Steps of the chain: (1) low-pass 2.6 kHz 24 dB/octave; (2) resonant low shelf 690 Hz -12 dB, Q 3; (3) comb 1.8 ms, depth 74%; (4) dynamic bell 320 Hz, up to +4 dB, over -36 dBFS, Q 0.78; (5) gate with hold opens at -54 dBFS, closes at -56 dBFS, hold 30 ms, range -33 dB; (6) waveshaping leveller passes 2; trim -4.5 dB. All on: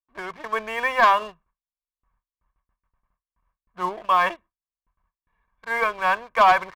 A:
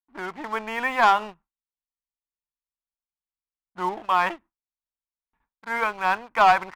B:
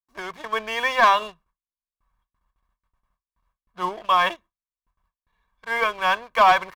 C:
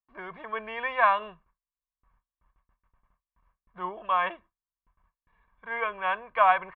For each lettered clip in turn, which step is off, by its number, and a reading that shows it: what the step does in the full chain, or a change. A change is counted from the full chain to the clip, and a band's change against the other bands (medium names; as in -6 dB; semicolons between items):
3, 250 Hz band +4.5 dB; 1, 4 kHz band +5.5 dB; 6, crest factor change +6.0 dB